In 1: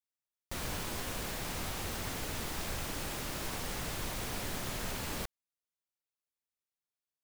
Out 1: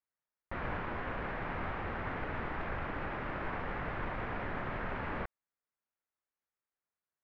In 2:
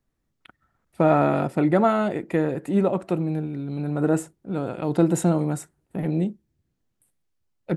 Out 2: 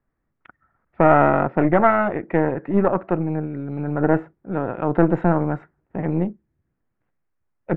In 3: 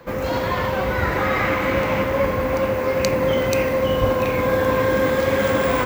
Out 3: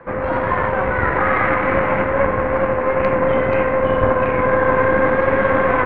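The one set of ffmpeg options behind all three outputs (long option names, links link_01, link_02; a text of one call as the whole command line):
ffmpeg -i in.wav -af "aeval=exprs='0.841*(cos(1*acos(clip(val(0)/0.841,-1,1)))-cos(1*PI/2))+0.075*(cos(8*acos(clip(val(0)/0.841,-1,1)))-cos(8*PI/2))':channel_layout=same,lowpass=frequency=1900:width=0.5412,lowpass=frequency=1900:width=1.3066,tiltshelf=frequency=730:gain=-3.5,volume=3.5dB" out.wav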